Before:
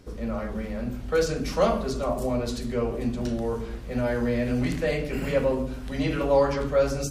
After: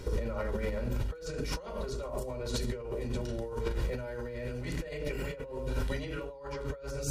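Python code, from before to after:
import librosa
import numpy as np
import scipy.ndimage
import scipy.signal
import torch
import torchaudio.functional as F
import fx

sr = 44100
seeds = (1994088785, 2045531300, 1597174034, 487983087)

y = x + 0.57 * np.pad(x, (int(2.1 * sr / 1000.0), 0))[:len(x)]
y = fx.over_compress(y, sr, threshold_db=-35.0, ratio=-1.0)
y = F.gain(torch.from_numpy(y), -1.5).numpy()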